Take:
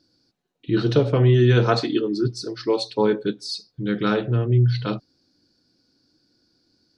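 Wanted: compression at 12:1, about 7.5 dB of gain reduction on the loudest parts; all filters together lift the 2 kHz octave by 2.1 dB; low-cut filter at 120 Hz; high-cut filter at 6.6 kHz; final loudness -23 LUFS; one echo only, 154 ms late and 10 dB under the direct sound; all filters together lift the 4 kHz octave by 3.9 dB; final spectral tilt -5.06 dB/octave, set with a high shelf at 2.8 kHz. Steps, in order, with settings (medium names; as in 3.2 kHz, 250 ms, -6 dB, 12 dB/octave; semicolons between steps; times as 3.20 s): high-pass 120 Hz; low-pass 6.6 kHz; peaking EQ 2 kHz +3 dB; treble shelf 2.8 kHz -4 dB; peaking EQ 4 kHz +7.5 dB; compression 12:1, threshold -20 dBFS; delay 154 ms -10 dB; trim +3 dB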